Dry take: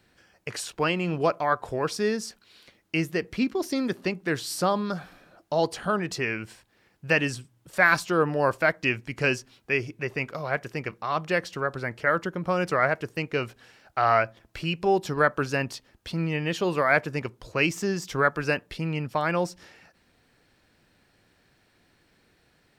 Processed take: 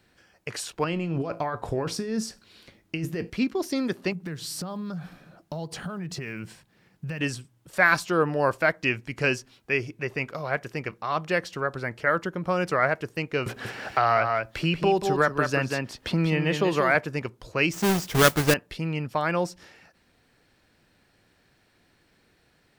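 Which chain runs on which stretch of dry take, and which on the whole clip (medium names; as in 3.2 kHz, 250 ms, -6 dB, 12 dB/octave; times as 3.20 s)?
0.84–3.30 s: bass shelf 400 Hz +8.5 dB + compressor with a negative ratio -25 dBFS + feedback comb 55 Hz, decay 0.28 s, mix 50%
4.12–7.21 s: block-companded coder 7-bit + peaking EQ 160 Hz +14 dB 0.74 oct + compression 10:1, threshold -30 dBFS
13.46–16.95 s: delay 185 ms -6 dB + three bands compressed up and down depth 70%
17.73–18.54 s: square wave that keeps the level + modulation noise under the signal 15 dB + tape noise reduction on one side only decoder only
whole clip: none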